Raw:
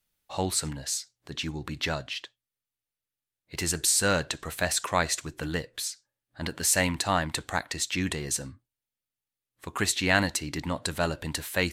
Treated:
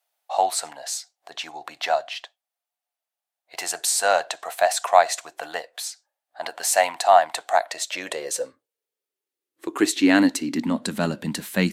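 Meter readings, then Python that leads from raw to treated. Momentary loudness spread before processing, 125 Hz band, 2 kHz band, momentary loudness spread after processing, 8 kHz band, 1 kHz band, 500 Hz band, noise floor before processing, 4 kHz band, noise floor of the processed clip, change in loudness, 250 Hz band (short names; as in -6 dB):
13 LU, n/a, +2.0 dB, 17 LU, +1.0 dB, +11.5 dB, +8.5 dB, under -85 dBFS, +1.0 dB, under -85 dBFS, +5.5 dB, +8.5 dB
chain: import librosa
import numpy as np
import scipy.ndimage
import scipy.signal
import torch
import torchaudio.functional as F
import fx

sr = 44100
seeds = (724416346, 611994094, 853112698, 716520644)

y = fx.filter_sweep_highpass(x, sr, from_hz=710.0, to_hz=200.0, start_s=7.45, end_s=11.12, q=7.4)
y = F.gain(torch.from_numpy(y), 1.0).numpy()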